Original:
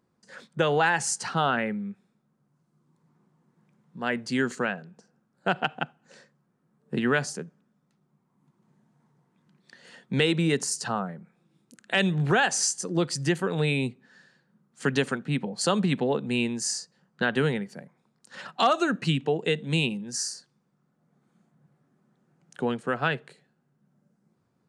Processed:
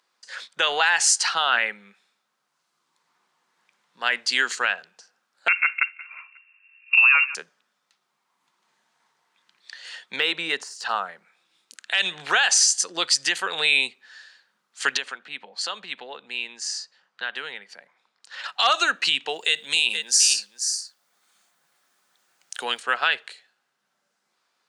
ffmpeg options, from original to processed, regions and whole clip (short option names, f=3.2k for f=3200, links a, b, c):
-filter_complex "[0:a]asettb=1/sr,asplit=3[a][b][c];[a]atrim=end=5.484[d];[b]atrim=start=5.48:end=7.35,asetpts=PTS-STARTPTS,afade=t=in:d=0.004:c=qsin,afade=t=out:st=1.866:d=0.004:c=qsin,lowpass=f=2.5k:t=q:w=0.5098,lowpass=f=2.5k:t=q:w=0.6013,lowpass=f=2.5k:t=q:w=0.9,lowpass=f=2.5k:t=q:w=2.563,afreqshift=-2900,aecho=1:1:180|360|540:0.0708|0.0368|0.0191,atrim=end_sample=82467[e];[c]atrim=start=7.346[f];[d][e]acrossfade=d=0.004:c1=hsin:c2=qsin[g];[g][f]acrossfade=d=0.004:c1=qsin:c2=hsin,asettb=1/sr,asplit=3[h][i][j];[h]atrim=end=10.164[k];[i]atrim=start=10.16:end=10.89,asetpts=PTS-STARTPTS,afade=t=in:d=0.004:c=qsin,afade=t=out:st=0.726:d=0.004:c=qsin,deesser=0.7,highshelf=f=2.6k:g=-12[l];[j]atrim=start=10.886[m];[k][l]acrossfade=d=0.004:c1=hsin:c2=qsin[n];[n][m]acrossfade=d=0.004:c1=qsin:c2=hsin,asettb=1/sr,asplit=3[o][p][q];[o]atrim=end=14.974[r];[p]atrim=start=14.97:end=18.44,asetpts=PTS-STARTPTS,afade=t=in:d=0.004:c=qsin,afade=t=out:st=3.466:d=0.004:c=qsin,aemphasis=mode=reproduction:type=50kf,acompressor=threshold=-49dB:ratio=1.5:attack=3.2:release=140:knee=1:detection=peak[s];[q]atrim=start=18.436[t];[r][s]acrossfade=d=0.004:c1=hsin:c2=qsin[u];[u][t]acrossfade=d=0.004:c1=qsin:c2=hsin,asettb=1/sr,asplit=3[v][w][x];[v]atrim=end=19.294[y];[w]atrim=start=19.29:end=22.8,asetpts=PTS-STARTPTS,afade=t=in:d=0.004:c=qsin,afade=t=out:st=3.506:d=0.004:c=qsin,aemphasis=mode=production:type=50fm,aecho=1:1:473:0.211,atrim=end_sample=154791[z];[x]atrim=start=22.796[aa];[y][z]acrossfade=d=0.004:c1=hsin:c2=qsin[ab];[ab][aa]acrossfade=d=0.004:c1=qsin:c2=hsin,highpass=850,equalizer=f=3.8k:w=0.57:g=11,alimiter=level_in=11.5dB:limit=-1dB:release=50:level=0:latency=1,volume=-7dB"